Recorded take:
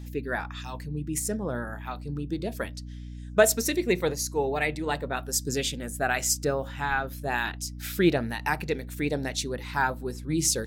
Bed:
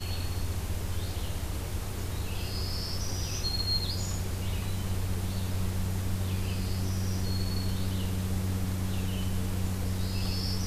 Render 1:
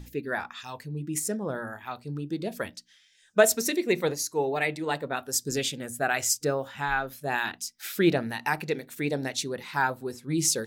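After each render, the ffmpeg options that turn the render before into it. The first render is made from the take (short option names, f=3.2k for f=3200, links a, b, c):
-af "bandreject=f=60:t=h:w=6,bandreject=f=120:t=h:w=6,bandreject=f=180:t=h:w=6,bandreject=f=240:t=h:w=6,bandreject=f=300:t=h:w=6"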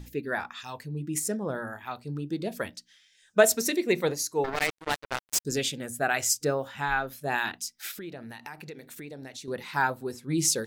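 -filter_complex "[0:a]asettb=1/sr,asplit=3[a][b][c];[a]atrim=end=4.444[d];[b]atrim=start=4.44:end=5.45,asetpts=PTS-STARTPTS,afade=t=in:d=0.004:c=qsin,afade=t=out:st=1.006:d=0.004:c=qsin,acrusher=bits=3:mix=0:aa=0.5[e];[c]atrim=start=5.446[f];[d][e]acrossfade=d=0.004:c1=hsin:c2=qsin[g];[g][f]acrossfade=d=0.004:c1=qsin:c2=hsin,asettb=1/sr,asplit=3[h][i][j];[h]atrim=end=7.914[k];[i]atrim=start=7.91:end=9.48,asetpts=PTS-STARTPTS,afade=t=in:d=0.004:c=qsin,afade=t=out:st=1.566:d=0.004:c=qsin,acompressor=threshold=-40dB:ratio=4:attack=3.2:release=140:knee=1:detection=peak[l];[j]atrim=start=9.476[m];[k][l]acrossfade=d=0.004:c1=hsin:c2=qsin[n];[n][m]acrossfade=d=0.004:c1=qsin:c2=hsin"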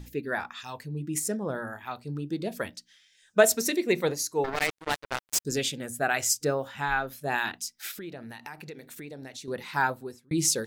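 -filter_complex "[0:a]asplit=2[a][b];[a]atrim=end=10.31,asetpts=PTS-STARTPTS,afade=t=out:st=9.9:d=0.41[c];[b]atrim=start=10.31,asetpts=PTS-STARTPTS,afade=t=in:d=0.004:c=hsin[d];[c][d]concat=n=2:v=0:a=1"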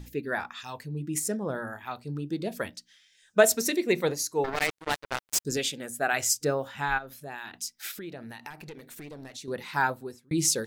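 -filter_complex "[0:a]asettb=1/sr,asplit=3[a][b][c];[a]atrim=end=5.574[d];[b]atrim=start=5.57:end=6.13,asetpts=PTS-STARTPTS,afade=t=in:d=0.004:c=qsin,afade=t=out:st=0.556:d=0.004:c=qsin,equalizer=f=81:t=o:w=2.1:g=-10[e];[c]atrim=start=6.126[f];[d][e]acrossfade=d=0.004:c1=hsin:c2=qsin[g];[g][f]acrossfade=d=0.004:c1=qsin:c2=hsin,asplit=3[h][i][j];[h]afade=t=out:st=6.97:d=0.02[k];[i]acompressor=threshold=-44dB:ratio=2:attack=3.2:release=140:knee=1:detection=peak,afade=t=in:st=6.97:d=0.02,afade=t=out:st=7.53:d=0.02[l];[j]afade=t=in:st=7.53:d=0.02[m];[k][l][m]amix=inputs=3:normalize=0,asettb=1/sr,asplit=3[n][o][p];[n]atrim=end=8.504[q];[o]atrim=start=8.5:end=9.34,asetpts=PTS-STARTPTS,afade=t=in:d=0.004:c=qsin,afade=t=out:st=0.836:d=0.004:c=qsin,aeval=exprs='clip(val(0),-1,0.00794)':c=same[r];[p]atrim=start=9.336[s];[q][r]acrossfade=d=0.004:c1=hsin:c2=qsin[t];[t][s]acrossfade=d=0.004:c1=qsin:c2=hsin"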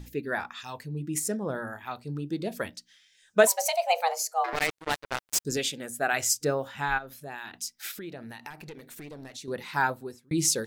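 -filter_complex "[0:a]asettb=1/sr,asplit=3[a][b][c];[a]atrim=end=3.474[d];[b]atrim=start=3.47:end=4.53,asetpts=PTS-STARTPTS,afade=t=in:d=0.004:c=qsin,afade=t=out:st=1.056:d=0.004:c=qsin,afreqshift=330[e];[c]atrim=start=4.526[f];[d][e]acrossfade=d=0.004:c1=hsin:c2=qsin[g];[g][f]acrossfade=d=0.004:c1=qsin:c2=hsin"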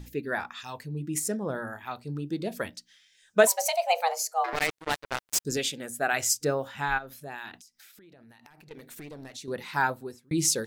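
-filter_complex "[0:a]asettb=1/sr,asplit=3[a][b][c];[a]atrim=end=7.564[d];[b]atrim=start=7.56:end=8.71,asetpts=PTS-STARTPTS,afade=t=in:d=0.004:c=qsin,afade=t=out:st=1.146:d=0.004:c=qsin,acompressor=threshold=-50dB:ratio=16:attack=3.2:release=140:knee=1:detection=peak[e];[c]atrim=start=8.706[f];[d][e]acrossfade=d=0.004:c1=hsin:c2=qsin[g];[g][f]acrossfade=d=0.004:c1=qsin:c2=hsin"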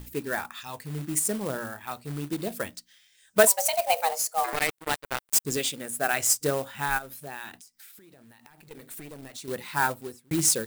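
-af "acrusher=bits=3:mode=log:mix=0:aa=0.000001,aexciter=amount=2.3:drive=3.8:freq=8.1k"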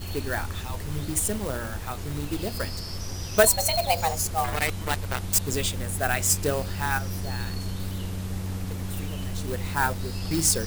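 -filter_complex "[1:a]volume=-1dB[a];[0:a][a]amix=inputs=2:normalize=0"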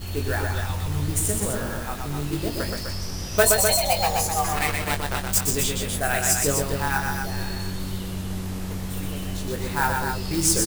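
-filter_complex "[0:a]asplit=2[a][b];[b]adelay=21,volume=-7dB[c];[a][c]amix=inputs=2:normalize=0,asplit=2[d][e];[e]aecho=0:1:122.4|253.6:0.631|0.501[f];[d][f]amix=inputs=2:normalize=0"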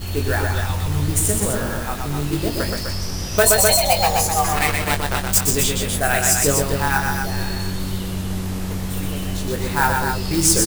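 -af "volume=5dB,alimiter=limit=-2dB:level=0:latency=1"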